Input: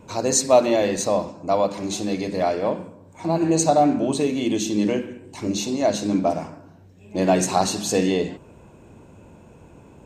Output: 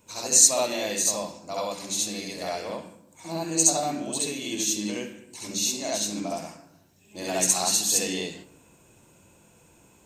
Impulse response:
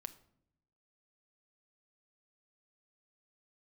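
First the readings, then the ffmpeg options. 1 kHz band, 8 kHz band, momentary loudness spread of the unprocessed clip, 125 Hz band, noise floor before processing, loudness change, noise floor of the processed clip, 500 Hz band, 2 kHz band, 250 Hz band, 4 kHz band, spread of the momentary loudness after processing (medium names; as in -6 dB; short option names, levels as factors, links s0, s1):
-9.5 dB, +6.5 dB, 14 LU, -11.5 dB, -49 dBFS, -2.0 dB, -58 dBFS, -11.0 dB, -2.5 dB, -11.0 dB, +2.5 dB, 16 LU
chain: -filter_complex "[0:a]crystalizer=i=9:c=0,asplit=2[s0][s1];[1:a]atrim=start_sample=2205,adelay=67[s2];[s1][s2]afir=irnorm=-1:irlink=0,volume=2.37[s3];[s0][s3]amix=inputs=2:normalize=0,volume=0.133"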